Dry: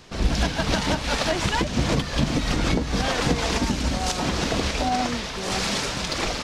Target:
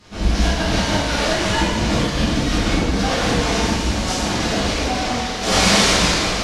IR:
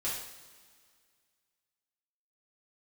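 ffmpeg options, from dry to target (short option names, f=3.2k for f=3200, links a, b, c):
-filter_complex "[0:a]asettb=1/sr,asplit=3[a][b][c];[a]atrim=end=5.414[d];[b]atrim=start=5.41:end=6.11,asetpts=PTS-STARTPTS,afade=t=in:d=0.004:c=qsin,afade=t=out:st=0.696:d=0.004:c=qsin,acontrast=86[e];[c]atrim=start=6.106[f];[d][e]acrossfade=d=0.004:c1=hsin:c2=qsin[g];[g][f]acrossfade=d=0.004:c1=qsin:c2=hsin[h];[1:a]atrim=start_sample=2205,asetrate=27342,aresample=44100[i];[h][i]afir=irnorm=-1:irlink=0,volume=-3.5dB"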